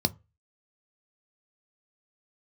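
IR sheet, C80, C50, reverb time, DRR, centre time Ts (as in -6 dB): 32.5 dB, 25.5 dB, no single decay rate, 11.0 dB, 2 ms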